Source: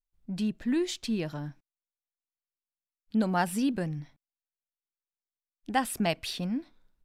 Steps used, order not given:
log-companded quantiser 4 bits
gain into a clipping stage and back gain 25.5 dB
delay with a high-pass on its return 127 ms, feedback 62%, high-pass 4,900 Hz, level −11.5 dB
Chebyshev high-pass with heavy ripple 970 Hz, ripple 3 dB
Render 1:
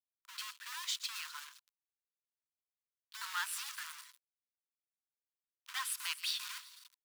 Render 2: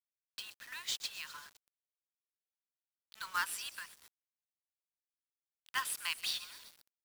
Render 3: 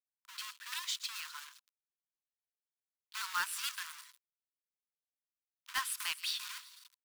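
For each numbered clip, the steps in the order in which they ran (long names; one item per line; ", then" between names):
delay with a high-pass on its return, then gain into a clipping stage and back, then log-companded quantiser, then Chebyshev high-pass with heavy ripple
Chebyshev high-pass with heavy ripple, then gain into a clipping stage and back, then delay with a high-pass on its return, then log-companded quantiser
delay with a high-pass on its return, then log-companded quantiser, then Chebyshev high-pass with heavy ripple, then gain into a clipping stage and back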